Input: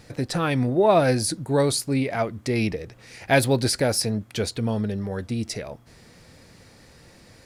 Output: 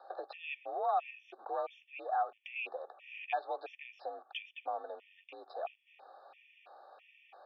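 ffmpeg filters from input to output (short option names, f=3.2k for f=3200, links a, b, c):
-filter_complex "[0:a]asplit=2[a][b];[b]acrusher=bits=3:dc=4:mix=0:aa=0.000001,volume=-8.5dB[c];[a][c]amix=inputs=2:normalize=0,acompressor=threshold=-32dB:ratio=3,asplit=3[d][e][f];[d]bandpass=f=730:t=q:w=8,volume=0dB[g];[e]bandpass=f=1.09k:t=q:w=8,volume=-6dB[h];[f]bandpass=f=2.44k:t=q:w=8,volume=-9dB[i];[g][h][i]amix=inputs=3:normalize=0,acrossover=split=950[j][k];[j]alimiter=level_in=16.5dB:limit=-24dB:level=0:latency=1:release=86,volume=-16.5dB[l];[k]aemphasis=mode=production:type=50fm[m];[l][m]amix=inputs=2:normalize=0,highpass=f=370:t=q:w=0.5412,highpass=f=370:t=q:w=1.307,lowpass=f=3.4k:t=q:w=0.5176,lowpass=f=3.4k:t=q:w=0.7071,lowpass=f=3.4k:t=q:w=1.932,afreqshift=56,afftfilt=real='re*gt(sin(2*PI*1.5*pts/sr)*(1-2*mod(floor(b*sr/1024/1800),2)),0)':imag='im*gt(sin(2*PI*1.5*pts/sr)*(1-2*mod(floor(b*sr/1024/1800),2)),0)':win_size=1024:overlap=0.75,volume=11dB"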